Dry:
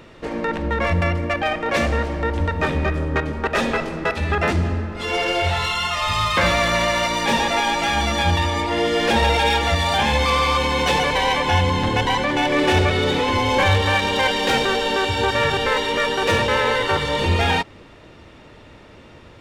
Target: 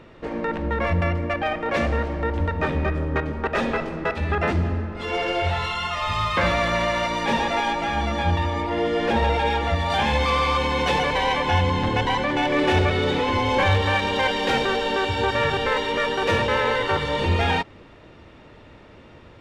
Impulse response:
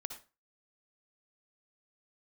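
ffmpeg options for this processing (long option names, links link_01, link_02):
-af "asetnsamples=nb_out_samples=441:pad=0,asendcmd='7.73 lowpass f 1500;9.9 lowpass f 3600',lowpass=frequency=2500:poles=1,volume=-2dB"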